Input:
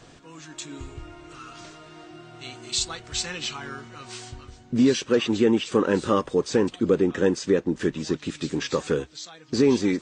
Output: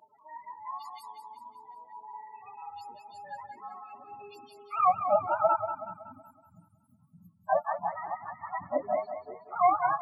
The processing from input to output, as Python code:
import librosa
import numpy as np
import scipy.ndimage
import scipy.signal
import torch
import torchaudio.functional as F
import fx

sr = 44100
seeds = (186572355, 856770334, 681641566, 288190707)

y = fx.octave_mirror(x, sr, pivot_hz=550.0)
y = fx.cheby2_bandstop(y, sr, low_hz=380.0, high_hz=3700.0, order=4, stop_db=50, at=(5.55, 7.48), fade=0.02)
y = fx.spec_topn(y, sr, count=16)
y = fx.filter_sweep_highpass(y, sr, from_hz=920.0, to_hz=420.0, start_s=3.79, end_s=4.36, q=3.7)
y = fx.echo_thinned(y, sr, ms=187, feedback_pct=48, hz=340.0, wet_db=-8.5)
y = F.gain(torch.from_numpy(y), -4.0).numpy()